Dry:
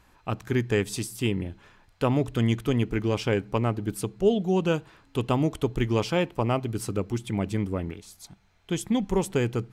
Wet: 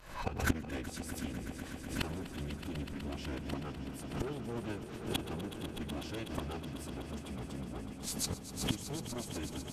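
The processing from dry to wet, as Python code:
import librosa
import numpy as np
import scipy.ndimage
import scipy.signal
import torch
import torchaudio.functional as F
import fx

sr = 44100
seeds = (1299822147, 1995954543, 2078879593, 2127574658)

y = fx.leveller(x, sr, passes=3)
y = fx.pitch_keep_formants(y, sr, semitones=-8.0)
y = fx.gate_flip(y, sr, shuts_db=-20.0, range_db=-26)
y = fx.echo_swell(y, sr, ms=124, loudest=5, wet_db=-13)
y = fx.pre_swell(y, sr, db_per_s=97.0)
y = y * 10.0 ** (2.0 / 20.0)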